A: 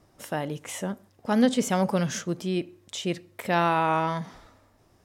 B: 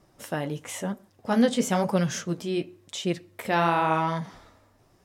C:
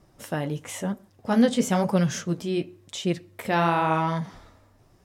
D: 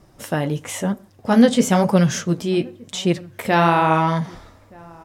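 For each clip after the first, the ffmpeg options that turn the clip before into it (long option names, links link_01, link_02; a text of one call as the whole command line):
ffmpeg -i in.wav -af "flanger=delay=5.2:depth=8.7:regen=-40:speed=0.99:shape=sinusoidal,volume=4dB" out.wav
ffmpeg -i in.wav -af "lowshelf=frequency=160:gain=6.5" out.wav
ffmpeg -i in.wav -filter_complex "[0:a]asplit=2[link_01][link_02];[link_02]adelay=1224,volume=-25dB,highshelf=frequency=4000:gain=-27.6[link_03];[link_01][link_03]amix=inputs=2:normalize=0,volume=6.5dB" out.wav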